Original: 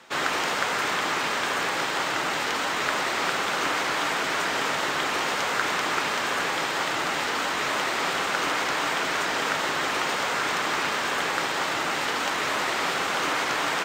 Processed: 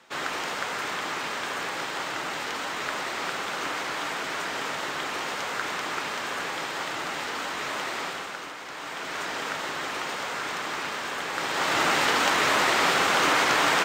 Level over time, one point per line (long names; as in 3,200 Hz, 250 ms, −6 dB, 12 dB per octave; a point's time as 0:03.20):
0:07.98 −5 dB
0:08.58 −14 dB
0:09.23 −5.5 dB
0:11.27 −5.5 dB
0:11.81 +4 dB